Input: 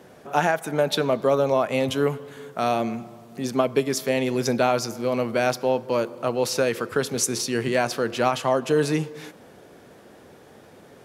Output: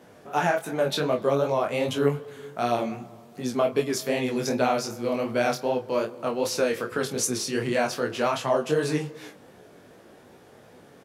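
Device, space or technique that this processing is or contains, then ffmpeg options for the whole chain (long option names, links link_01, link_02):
double-tracked vocal: -filter_complex "[0:a]asplit=2[link_01][link_02];[link_02]adelay=28,volume=-9dB[link_03];[link_01][link_03]amix=inputs=2:normalize=0,flanger=delay=16:depth=5.7:speed=2.6"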